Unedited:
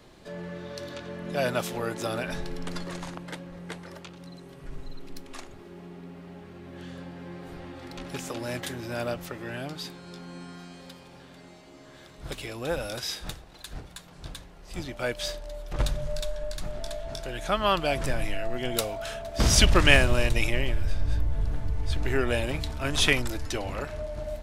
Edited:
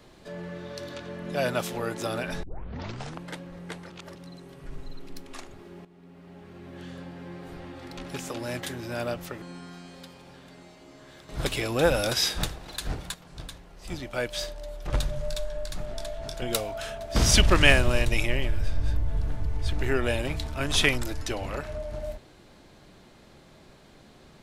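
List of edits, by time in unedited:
2.43 s: tape start 0.76 s
3.90–4.15 s: reverse
5.85–6.63 s: fade in, from -14 dB
9.42–10.28 s: delete
12.15–14.00 s: gain +8 dB
17.28–18.66 s: delete

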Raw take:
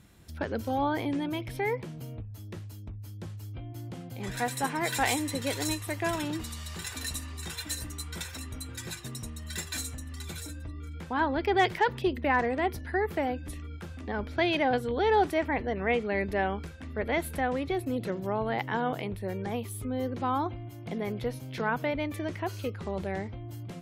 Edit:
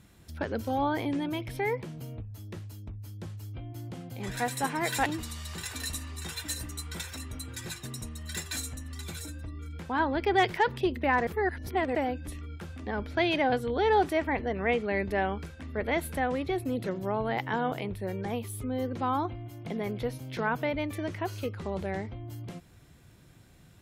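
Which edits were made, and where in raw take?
5.06–6.27 s: delete
12.48–13.16 s: reverse

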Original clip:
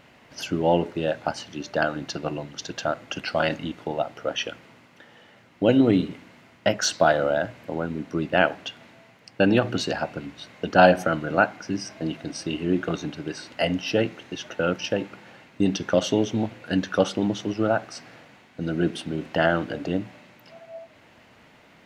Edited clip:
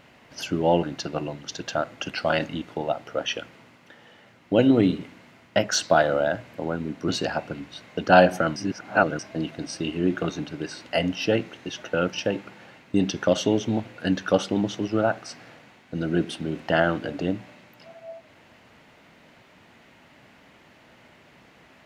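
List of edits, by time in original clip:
0.83–1.93 s: delete
8.18–9.74 s: delete
11.22–11.85 s: reverse

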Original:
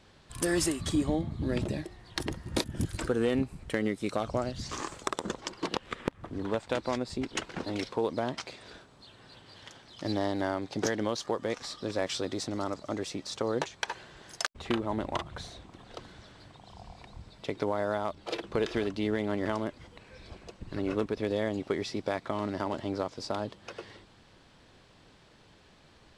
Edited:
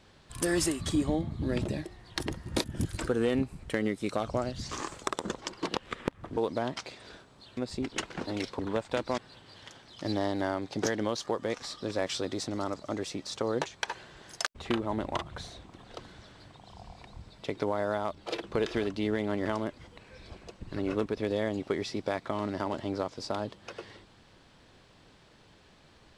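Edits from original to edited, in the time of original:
6.37–6.96 s: swap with 7.98–9.18 s

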